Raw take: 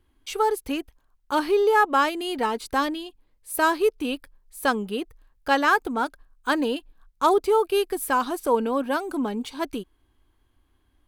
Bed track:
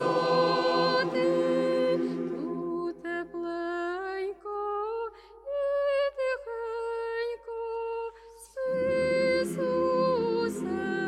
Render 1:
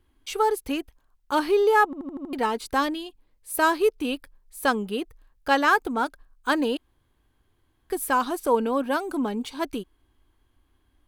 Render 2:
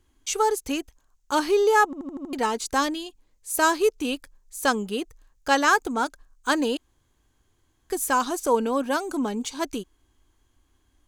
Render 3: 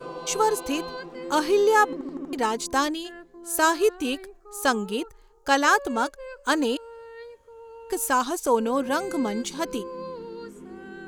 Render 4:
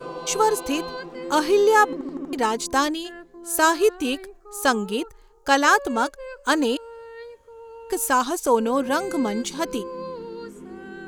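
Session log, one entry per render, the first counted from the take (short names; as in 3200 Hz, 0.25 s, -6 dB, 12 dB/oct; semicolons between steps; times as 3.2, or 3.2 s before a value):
1.85 stutter in place 0.08 s, 6 plays; 6.77–7.9 room tone
bell 6700 Hz +14 dB 0.69 oct
add bed track -10.5 dB
gain +2.5 dB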